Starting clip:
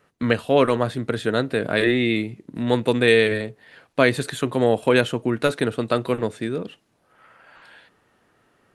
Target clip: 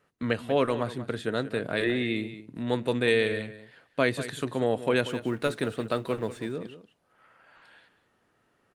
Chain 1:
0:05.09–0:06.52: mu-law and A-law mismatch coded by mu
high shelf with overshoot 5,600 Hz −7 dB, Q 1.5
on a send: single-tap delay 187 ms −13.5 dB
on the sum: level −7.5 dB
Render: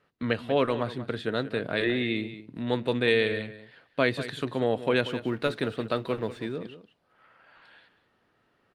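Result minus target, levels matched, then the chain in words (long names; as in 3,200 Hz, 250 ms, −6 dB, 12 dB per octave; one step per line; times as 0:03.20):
8,000 Hz band −8.5 dB
0:05.09–0:06.52: mu-law and A-law mismatch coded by mu
on a send: single-tap delay 187 ms −13.5 dB
on the sum: level −7.5 dB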